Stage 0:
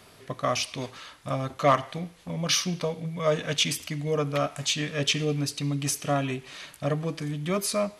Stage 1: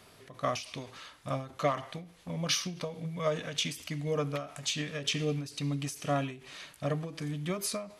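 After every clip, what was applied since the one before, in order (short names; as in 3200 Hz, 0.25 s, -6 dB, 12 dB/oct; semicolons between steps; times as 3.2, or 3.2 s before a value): ending taper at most 120 dB/s; gain -4 dB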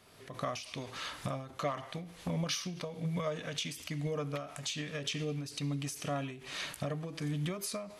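recorder AGC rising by 32 dB/s; gain -6 dB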